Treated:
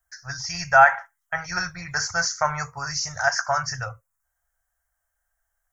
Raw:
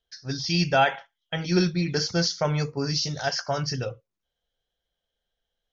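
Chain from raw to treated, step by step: EQ curve 100 Hz 0 dB, 230 Hz -29 dB, 380 Hz -29 dB, 680 Hz -1 dB, 1300 Hz +7 dB, 1900 Hz +3 dB, 3400 Hz -25 dB, 7600 Hz +11 dB; gain +5 dB

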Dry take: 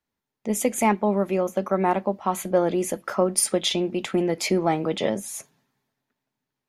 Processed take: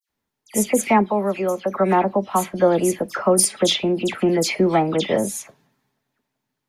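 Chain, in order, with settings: 1.01–1.66 low shelf 360 Hz -7.5 dB; dispersion lows, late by 90 ms, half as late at 2700 Hz; gain +4.5 dB

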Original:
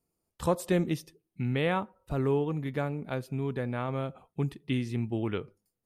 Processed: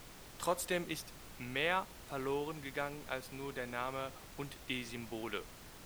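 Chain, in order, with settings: HPF 1300 Hz 6 dB/oct; added noise pink -54 dBFS; gain +1 dB

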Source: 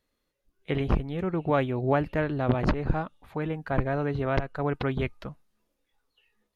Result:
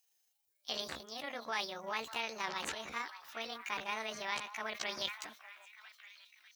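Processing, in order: delay-line pitch shifter +7 st; limiter -18.5 dBFS, peak gain reduction 8.5 dB; differentiator; on a send: delay with a stepping band-pass 0.593 s, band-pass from 1100 Hz, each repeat 0.7 oct, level -11 dB; on the sum: sustainer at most 140 dB/s; gain +8 dB

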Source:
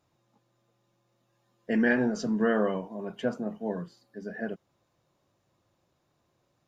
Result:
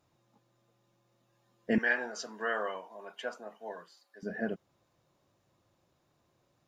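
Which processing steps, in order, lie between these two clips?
1.78–4.23 HPF 820 Hz 12 dB/oct

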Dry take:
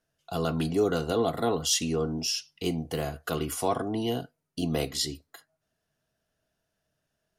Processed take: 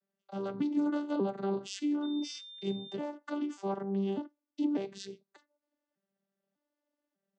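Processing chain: arpeggiated vocoder bare fifth, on G3, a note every 0.595 s; 2.02–2.94 whine 3600 Hz -42 dBFS; gain -4 dB

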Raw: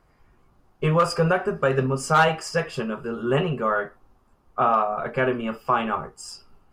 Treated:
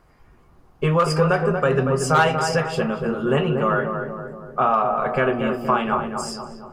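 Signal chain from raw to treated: in parallel at +1 dB: compressor, threshold -27 dBFS, peak gain reduction 13 dB; on the sum: darkening echo 0.235 s, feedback 58%, low-pass 1300 Hz, level -5 dB; gain -1.5 dB

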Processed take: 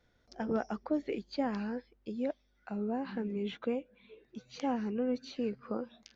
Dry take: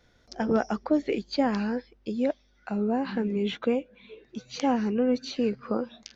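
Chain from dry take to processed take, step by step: high shelf 4500 Hz -6 dB; gain -8 dB

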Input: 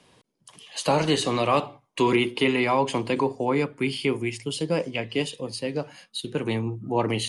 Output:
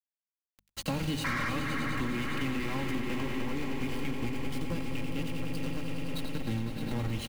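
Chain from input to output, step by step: bell 610 Hz -11 dB 2.7 oct; sample gate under -29 dBFS; on a send: split-band echo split 2000 Hz, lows 0.473 s, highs 89 ms, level -9 dB; on the sum: painted sound noise, 1.24–1.5, 950–2400 Hz -23 dBFS; swelling echo 0.103 s, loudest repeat 5, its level -13 dB; soft clip -25 dBFS, distortion -11 dB; tone controls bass +15 dB, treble -6 dB; notches 50/100/150/200 Hz; comb 3.7 ms, depth 42%; compressor, threshold -28 dBFS, peak gain reduction 8.5 dB

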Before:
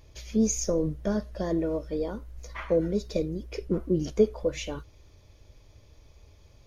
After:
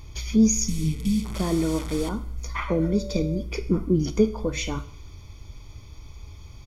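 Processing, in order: 0.68–2.09 delta modulation 64 kbps, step -34.5 dBFS; 2.68–3.41 whine 580 Hz -32 dBFS; comb 0.9 ms, depth 64%; in parallel at +1 dB: compressor, threshold -36 dBFS, peak gain reduction 18.5 dB; on the sum: Schroeder reverb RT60 0.64 s, combs from 25 ms, DRR 13 dB; 0.64–1.23 spectral repair 310–2200 Hz before; gain +1.5 dB

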